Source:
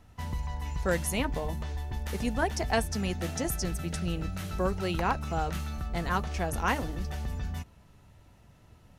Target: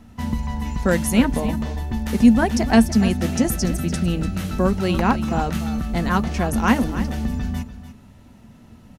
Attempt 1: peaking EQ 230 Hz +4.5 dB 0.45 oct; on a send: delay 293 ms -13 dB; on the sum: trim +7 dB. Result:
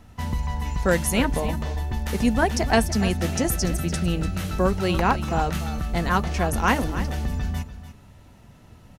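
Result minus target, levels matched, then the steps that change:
250 Hz band -4.0 dB
change: peaking EQ 230 Hz +15.5 dB 0.45 oct

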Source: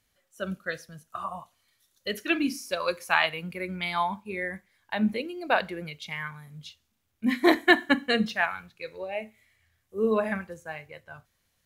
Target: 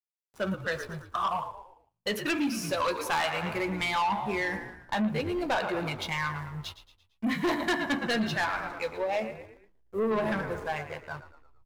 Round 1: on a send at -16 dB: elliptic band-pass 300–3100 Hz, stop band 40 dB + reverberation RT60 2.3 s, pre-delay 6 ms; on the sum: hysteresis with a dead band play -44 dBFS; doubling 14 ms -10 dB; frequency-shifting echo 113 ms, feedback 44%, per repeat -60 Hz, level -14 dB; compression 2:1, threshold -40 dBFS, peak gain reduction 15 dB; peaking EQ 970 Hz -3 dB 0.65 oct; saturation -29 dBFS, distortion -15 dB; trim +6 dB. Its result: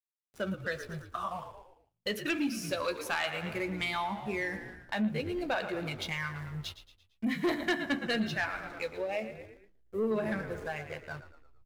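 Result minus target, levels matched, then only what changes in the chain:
compression: peak gain reduction +4.5 dB; 1 kHz band -4.0 dB
change: compression 2:1, threshold -31 dBFS, peak gain reduction 10.5 dB; change: peaking EQ 970 Hz +6.5 dB 0.65 oct

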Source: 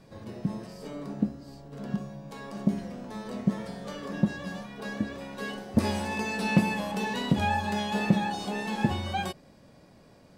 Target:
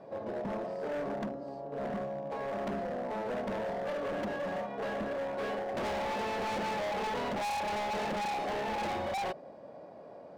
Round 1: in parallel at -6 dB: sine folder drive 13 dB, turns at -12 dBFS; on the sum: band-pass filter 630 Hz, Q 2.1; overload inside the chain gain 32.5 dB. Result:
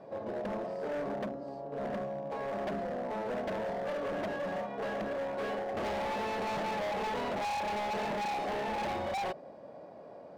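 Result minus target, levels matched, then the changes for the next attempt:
sine folder: distortion +8 dB
change: sine folder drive 13 dB, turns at -4 dBFS

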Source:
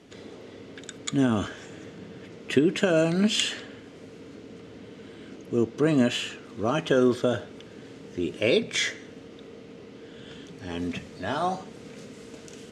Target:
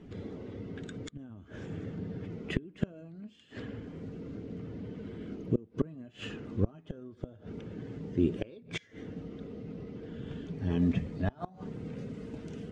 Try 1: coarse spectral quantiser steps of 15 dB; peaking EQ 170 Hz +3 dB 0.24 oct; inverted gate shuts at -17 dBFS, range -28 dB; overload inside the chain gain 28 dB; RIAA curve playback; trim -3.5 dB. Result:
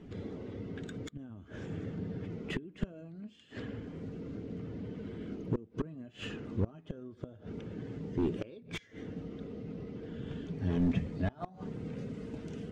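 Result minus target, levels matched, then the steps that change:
overload inside the chain: distortion +16 dB
change: overload inside the chain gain 17.5 dB

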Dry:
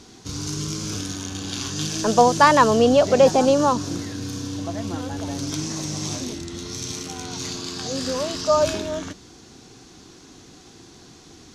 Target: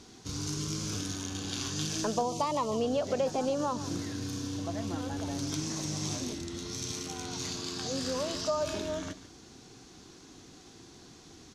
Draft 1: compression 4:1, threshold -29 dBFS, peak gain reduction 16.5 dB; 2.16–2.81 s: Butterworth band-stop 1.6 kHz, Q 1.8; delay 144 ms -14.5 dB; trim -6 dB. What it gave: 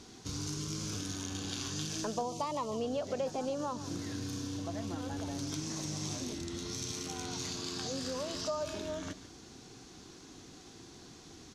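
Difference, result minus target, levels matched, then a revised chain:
compression: peak gain reduction +5.5 dB
compression 4:1, threshold -22 dBFS, peak gain reduction 11 dB; 2.16–2.81 s: Butterworth band-stop 1.6 kHz, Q 1.8; delay 144 ms -14.5 dB; trim -6 dB

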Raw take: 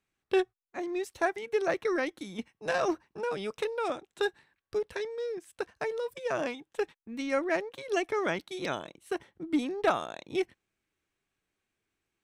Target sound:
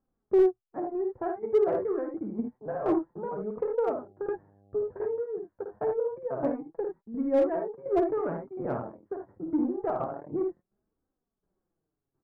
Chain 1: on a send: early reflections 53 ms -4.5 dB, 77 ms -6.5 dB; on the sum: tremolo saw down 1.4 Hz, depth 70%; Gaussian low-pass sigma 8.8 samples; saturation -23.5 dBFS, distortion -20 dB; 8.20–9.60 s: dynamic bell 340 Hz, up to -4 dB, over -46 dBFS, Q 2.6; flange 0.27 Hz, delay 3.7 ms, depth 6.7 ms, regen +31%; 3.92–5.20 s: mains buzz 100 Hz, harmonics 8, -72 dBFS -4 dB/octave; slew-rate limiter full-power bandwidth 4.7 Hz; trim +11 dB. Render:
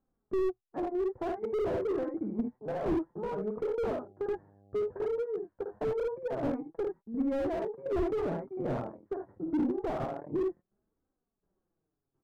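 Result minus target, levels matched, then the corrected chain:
slew-rate limiter: distortion +20 dB
on a send: early reflections 53 ms -4.5 dB, 77 ms -6.5 dB; on the sum: tremolo saw down 1.4 Hz, depth 70%; Gaussian low-pass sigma 8.8 samples; saturation -23.5 dBFS, distortion -20 dB; 8.20–9.60 s: dynamic bell 340 Hz, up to -4 dB, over -46 dBFS, Q 2.6; flange 0.27 Hz, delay 3.7 ms, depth 6.7 ms, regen +31%; 3.92–5.20 s: mains buzz 100 Hz, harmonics 8, -72 dBFS -4 dB/octave; slew-rate limiter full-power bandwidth 18 Hz; trim +11 dB

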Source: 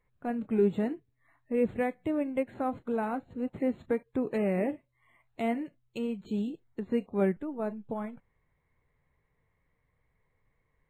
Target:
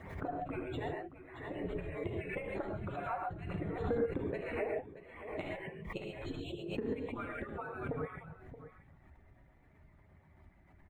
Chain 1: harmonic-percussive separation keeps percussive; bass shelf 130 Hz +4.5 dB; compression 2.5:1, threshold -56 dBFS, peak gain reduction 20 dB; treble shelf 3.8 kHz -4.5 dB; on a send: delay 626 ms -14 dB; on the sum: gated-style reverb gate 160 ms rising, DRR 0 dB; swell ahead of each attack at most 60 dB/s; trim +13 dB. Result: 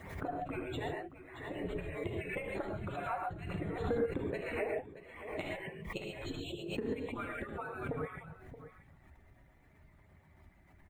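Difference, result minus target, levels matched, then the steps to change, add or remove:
4 kHz band +4.0 dB
change: treble shelf 3.8 kHz -16 dB

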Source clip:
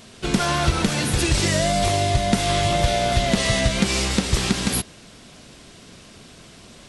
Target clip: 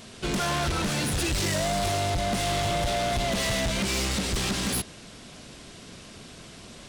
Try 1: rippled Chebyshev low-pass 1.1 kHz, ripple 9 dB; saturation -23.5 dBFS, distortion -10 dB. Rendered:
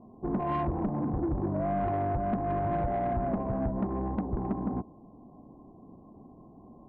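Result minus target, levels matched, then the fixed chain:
1 kHz band +3.0 dB
saturation -23.5 dBFS, distortion -7 dB

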